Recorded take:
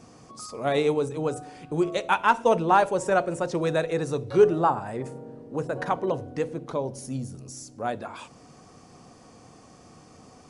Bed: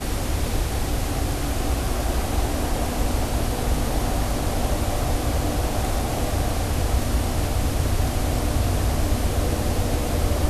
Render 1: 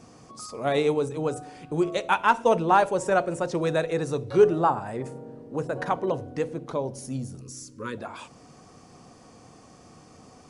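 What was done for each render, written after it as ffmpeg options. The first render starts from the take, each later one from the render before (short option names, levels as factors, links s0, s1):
-filter_complex "[0:a]asettb=1/sr,asplit=3[s0][s1][s2];[s0]atrim=end=7.414[s3];[s1]atrim=start=7.41:end=7.98,asetpts=PTS-STARTPTS,afade=t=in:d=0.004:c=qsin,afade=t=out:st=0.566:d=0.004:c=qsin,asuperstop=centerf=720:order=20:qfactor=1.9[s4];[s2]atrim=start=7.976[s5];[s3][s4]acrossfade=d=0.004:c1=hsin:c2=qsin[s6];[s6][s5]acrossfade=d=0.004:c1=qsin:c2=hsin"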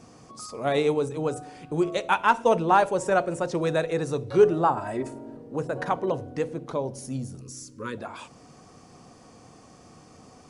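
-filter_complex "[0:a]asettb=1/sr,asplit=3[s0][s1][s2];[s0]atrim=end=4.774[s3];[s1]atrim=start=4.77:end=5.37,asetpts=PTS-STARTPTS,afade=t=in:d=0.004:c=qsin,afade=t=out:st=0.596:d=0.004:c=qsin,aecho=1:1:3.1:0.98,atrim=end_sample=26460[s4];[s2]atrim=start=5.366[s5];[s3][s4]acrossfade=d=0.004:c1=hsin:c2=qsin[s6];[s6][s5]acrossfade=d=0.004:c1=qsin:c2=hsin"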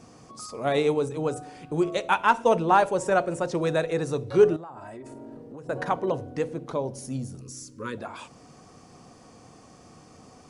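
-filter_complex "[0:a]asettb=1/sr,asplit=3[s0][s1][s2];[s0]atrim=end=4.564[s3];[s1]atrim=start=4.56:end=5.69,asetpts=PTS-STARTPTS,afade=t=in:d=0.004:c=qsin,afade=t=out:st=1.126:d=0.004:c=qsin,acompressor=threshold=0.0141:ratio=12:attack=3.2:release=140:knee=1:detection=peak[s4];[s2]atrim=start=5.686[s5];[s3][s4]acrossfade=d=0.004:c1=hsin:c2=qsin[s6];[s6][s5]acrossfade=d=0.004:c1=qsin:c2=hsin"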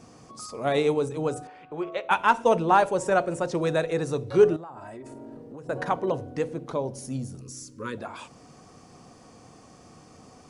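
-filter_complex "[0:a]asettb=1/sr,asplit=3[s0][s1][s2];[s0]atrim=end=1.474[s3];[s1]atrim=start=1.47:end=2.11,asetpts=PTS-STARTPTS,afade=t=in:d=0.004:c=qsin,afade=t=out:st=0.636:d=0.004:c=qsin,acrossover=split=460 3300:gain=0.224 1 0.0631[s4][s5][s6];[s4][s5][s6]amix=inputs=3:normalize=0[s7];[s2]atrim=start=2.106[s8];[s3][s7]acrossfade=d=0.004:c1=hsin:c2=qsin[s9];[s9][s8]acrossfade=d=0.004:c1=qsin:c2=hsin"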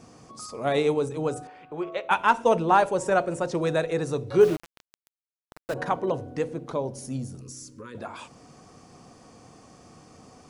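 -filter_complex "[0:a]asettb=1/sr,asplit=3[s0][s1][s2];[s0]atrim=end=4.414[s3];[s1]atrim=start=4.41:end=5.74,asetpts=PTS-STARTPTS,afade=t=in:d=0.004:c=qsin,afade=t=out:st=1.326:d=0.004:c=qsin,aeval=exprs='val(0)*gte(abs(val(0)),0.0237)':c=same[s4];[s2]atrim=start=5.736[s5];[s3][s4]acrossfade=d=0.004:c1=hsin:c2=qsin[s6];[s6][s5]acrossfade=d=0.004:c1=qsin:c2=hsin,asettb=1/sr,asplit=3[s7][s8][s9];[s7]atrim=end=7.514[s10];[s8]atrim=start=7.51:end=7.95,asetpts=PTS-STARTPTS,afade=t=in:d=0.004:c=qsin,afade=t=out:st=0.436:d=0.004:c=qsin,acompressor=threshold=0.0141:ratio=6:attack=3.2:release=140:knee=1:detection=peak[s11];[s9]atrim=start=7.946[s12];[s10][s11]acrossfade=d=0.004:c1=hsin:c2=qsin[s13];[s13][s12]acrossfade=d=0.004:c1=qsin:c2=hsin"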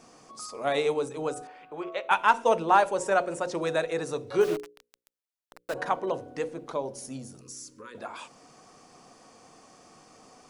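-af "equalizer=f=74:t=o:w=2.9:g=-14.5,bandreject=f=60:t=h:w=6,bandreject=f=120:t=h:w=6,bandreject=f=180:t=h:w=6,bandreject=f=240:t=h:w=6,bandreject=f=300:t=h:w=6,bandreject=f=360:t=h:w=6,bandreject=f=420:t=h:w=6,bandreject=f=480:t=h:w=6,bandreject=f=540:t=h:w=6"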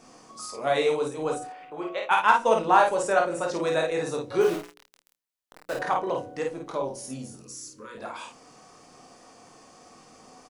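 -filter_complex "[0:a]asplit=2[s0][s1];[s1]adelay=27,volume=0.237[s2];[s0][s2]amix=inputs=2:normalize=0,aecho=1:1:23|51:0.447|0.668"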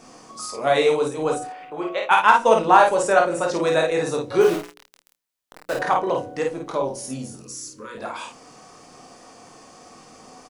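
-af "volume=1.88,alimiter=limit=0.891:level=0:latency=1"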